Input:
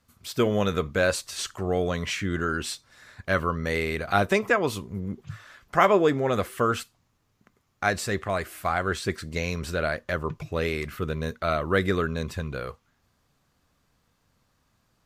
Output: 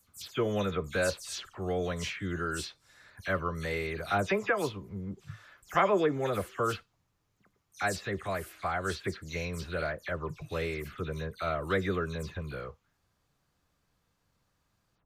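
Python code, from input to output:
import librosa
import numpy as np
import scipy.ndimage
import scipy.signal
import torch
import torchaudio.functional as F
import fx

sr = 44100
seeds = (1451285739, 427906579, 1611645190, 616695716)

y = fx.spec_delay(x, sr, highs='early', ms=107)
y = y * 10.0 ** (-6.0 / 20.0)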